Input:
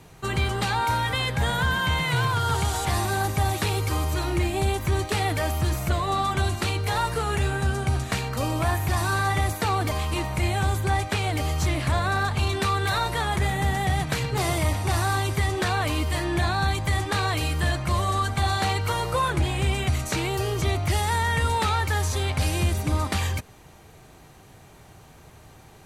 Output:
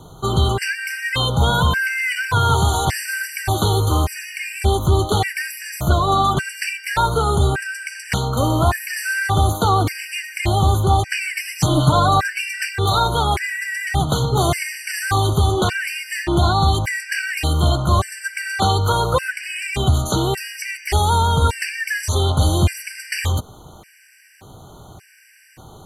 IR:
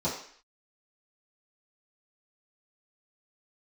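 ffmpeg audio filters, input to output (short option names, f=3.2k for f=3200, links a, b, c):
-filter_complex "[0:a]asettb=1/sr,asplit=3[a][b][c];[a]atrim=end=11.204[d];[b]atrim=start=11.2:end=12.63,asetpts=PTS-STARTPTS,afade=t=in:d=0.004:c=qsin,afade=t=out:st=1.426:d=0.004:c=qsin,aecho=1:1:6.7:0.87,atrim=end_sample=63063[e];[c]atrim=start=12.626[f];[d][e]acrossfade=d=0.004:c1=hsin:c2=qsin[g];[g][f]acrossfade=d=0.004:c1=qsin:c2=hsin,afftfilt=real='re*gt(sin(2*PI*0.86*pts/sr)*(1-2*mod(floor(b*sr/1024/1500),2)),0)':imag='im*gt(sin(2*PI*0.86*pts/sr)*(1-2*mod(floor(b*sr/1024/1500),2)),0)':win_size=1024:overlap=0.75,volume=8.5dB"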